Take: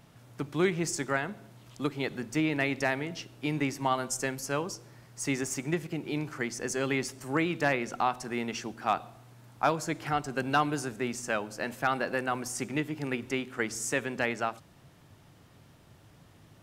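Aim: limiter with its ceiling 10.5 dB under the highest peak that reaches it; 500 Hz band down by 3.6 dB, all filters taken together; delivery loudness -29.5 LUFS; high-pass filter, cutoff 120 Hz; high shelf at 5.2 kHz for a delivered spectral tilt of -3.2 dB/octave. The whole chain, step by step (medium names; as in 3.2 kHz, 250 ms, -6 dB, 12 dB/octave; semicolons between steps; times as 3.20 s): high-pass 120 Hz; peaking EQ 500 Hz -5 dB; treble shelf 5.2 kHz +8.5 dB; trim +5.5 dB; peak limiter -18 dBFS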